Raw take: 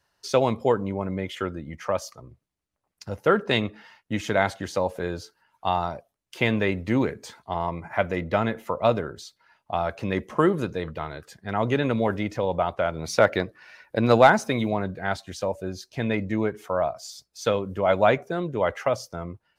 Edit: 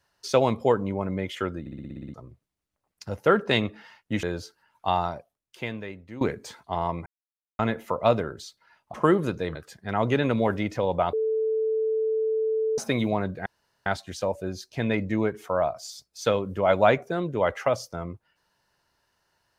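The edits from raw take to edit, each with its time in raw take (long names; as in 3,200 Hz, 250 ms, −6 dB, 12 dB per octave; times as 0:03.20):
0:01.60: stutter in place 0.06 s, 9 plays
0:04.23–0:05.02: remove
0:05.80–0:07.00: fade out quadratic, to −17 dB
0:07.85–0:08.38: silence
0:09.73–0:10.29: remove
0:10.90–0:11.15: remove
0:12.73–0:14.38: beep over 440 Hz −22 dBFS
0:15.06: splice in room tone 0.40 s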